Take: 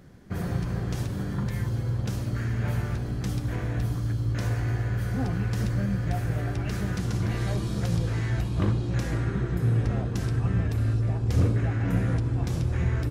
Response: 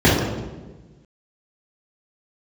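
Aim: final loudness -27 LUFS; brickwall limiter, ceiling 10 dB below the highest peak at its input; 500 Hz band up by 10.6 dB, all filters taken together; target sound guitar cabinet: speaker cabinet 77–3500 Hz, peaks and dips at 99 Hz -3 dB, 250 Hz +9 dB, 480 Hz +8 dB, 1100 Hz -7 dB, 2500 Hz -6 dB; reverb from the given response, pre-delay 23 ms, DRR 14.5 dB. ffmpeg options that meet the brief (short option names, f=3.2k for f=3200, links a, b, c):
-filter_complex "[0:a]equalizer=f=500:t=o:g=7,alimiter=limit=-22.5dB:level=0:latency=1,asplit=2[a][b];[1:a]atrim=start_sample=2205,adelay=23[c];[b][c]afir=irnorm=-1:irlink=0,volume=-40dB[d];[a][d]amix=inputs=2:normalize=0,highpass=77,equalizer=f=99:t=q:w=4:g=-3,equalizer=f=250:t=q:w=4:g=9,equalizer=f=480:t=q:w=4:g=8,equalizer=f=1.1k:t=q:w=4:g=-7,equalizer=f=2.5k:t=q:w=4:g=-6,lowpass=f=3.5k:w=0.5412,lowpass=f=3.5k:w=1.3066,volume=2.5dB"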